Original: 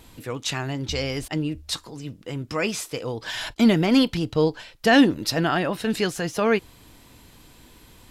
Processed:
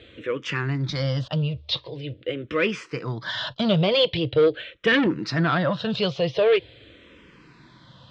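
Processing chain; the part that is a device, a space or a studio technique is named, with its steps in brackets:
barber-pole phaser into a guitar amplifier (frequency shifter mixed with the dry sound −0.44 Hz; soft clipping −20 dBFS, distortion −9 dB; loudspeaker in its box 100–4,000 Hz, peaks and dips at 130 Hz +6 dB, 250 Hz −8 dB, 540 Hz +7 dB, 810 Hz −9 dB, 3,400 Hz +5 dB)
level +6 dB

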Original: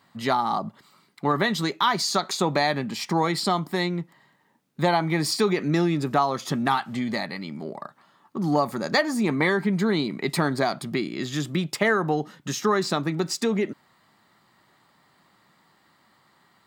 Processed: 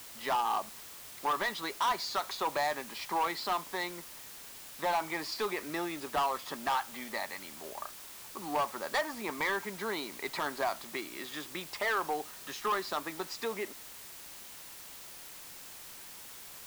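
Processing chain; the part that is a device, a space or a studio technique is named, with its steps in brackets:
drive-through speaker (band-pass filter 520–3,900 Hz; parametric band 990 Hz +5.5 dB 0.4 octaves; hard clipping −19.5 dBFS, distortion −10 dB; white noise bed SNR 12 dB)
level −6 dB

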